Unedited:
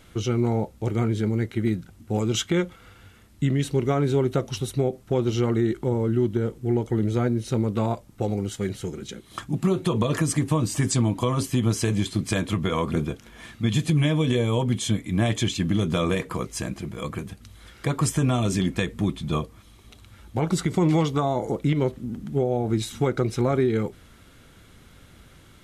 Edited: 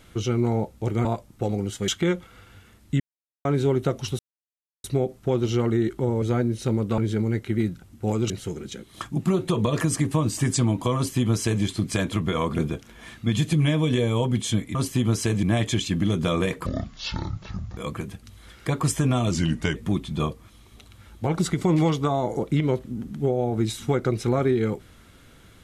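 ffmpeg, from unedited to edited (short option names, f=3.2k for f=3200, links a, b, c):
-filter_complex "[0:a]asplit=15[a][b][c][d][e][f][g][h][i][j][k][l][m][n][o];[a]atrim=end=1.052[p];[b]atrim=start=7.838:end=8.672[q];[c]atrim=start=2.368:end=3.49,asetpts=PTS-STARTPTS,afade=t=out:st=1.118:d=0.004:c=hsin[r];[d]atrim=start=3.49:end=3.94,asetpts=PTS-STARTPTS,volume=0[s];[e]atrim=start=3.94:end=4.68,asetpts=PTS-STARTPTS,afade=t=in:d=0.004:c=hsin,afade=t=out:st=0.736:d=0.004:c=hsin,apad=pad_dur=0.65[t];[f]atrim=start=4.68:end=6.062,asetpts=PTS-STARTPTS,afade=t=in:d=0.004:c=hsin[u];[g]atrim=start=7.078:end=7.842[v];[h]atrim=start=1.048:end=2.372[w];[i]atrim=start=8.668:end=15.122[x];[j]atrim=start=11.328:end=12.012[y];[k]atrim=start=15.118:end=16.354[z];[l]atrim=start=16.35:end=16.95,asetpts=PTS-STARTPTS,asetrate=23814,aresample=44100[aa];[m]atrim=start=16.946:end=18.494[ab];[n]atrim=start=18.49:end=18.88,asetpts=PTS-STARTPTS,asetrate=38808,aresample=44100,atrim=end_sample=19544,asetpts=PTS-STARTPTS[ac];[o]atrim=start=18.876[ad];[p][q]acrossfade=d=0.004:c1=hsin:c2=hsin[ae];[r][s][t][u]concat=n=4:v=0:a=1[af];[ae][af]acrossfade=d=0.004:c1=hsin:c2=hsin[ag];[ag][v]acrossfade=d=0.004:c1=hsin:c2=hsin[ah];[ah][w]acrossfade=d=0.004:c1=hsin:c2=hsin[ai];[ai][x]acrossfade=d=0.004:c1=hsin:c2=hsin[aj];[aj][y]acrossfade=d=0.004:c1=hsin:c2=hsin[ak];[ak][z]acrossfade=d=0.004:c1=hsin:c2=hsin[al];[al][aa]acrossfade=d=0.004:c1=hsin:c2=hsin[am];[am][ab]acrossfade=d=0.004:c1=hsin:c2=hsin[an];[an][ac]acrossfade=d=0.004:c1=hsin:c2=hsin[ao];[ao][ad]acrossfade=d=0.004:c1=hsin:c2=hsin"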